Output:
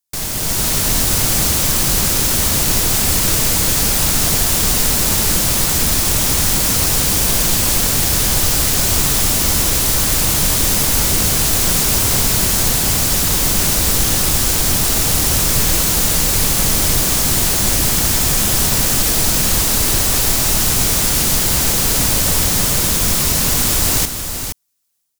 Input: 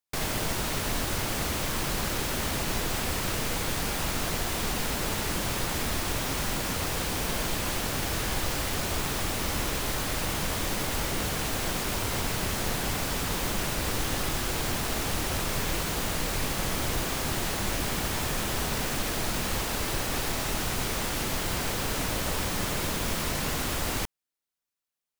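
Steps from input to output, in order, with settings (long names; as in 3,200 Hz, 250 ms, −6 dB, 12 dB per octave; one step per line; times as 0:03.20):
bass and treble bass +5 dB, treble +12 dB
automatic gain control gain up to 9 dB
single-tap delay 470 ms −8 dB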